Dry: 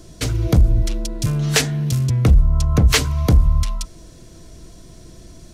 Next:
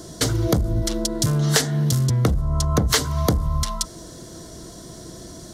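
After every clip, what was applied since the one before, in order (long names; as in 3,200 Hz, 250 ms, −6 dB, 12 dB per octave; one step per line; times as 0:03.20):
high-pass filter 200 Hz 6 dB per octave
parametric band 2,500 Hz −13.5 dB 0.39 octaves
downward compressor 3 to 1, threshold −26 dBFS, peak gain reduction 10 dB
level +8 dB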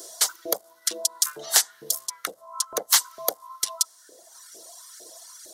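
RIAA equalisation recording
auto-filter high-pass saw up 2.2 Hz 420–1,600 Hz
reverb reduction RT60 1.7 s
level −7.5 dB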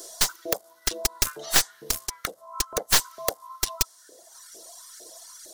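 stylus tracing distortion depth 0.11 ms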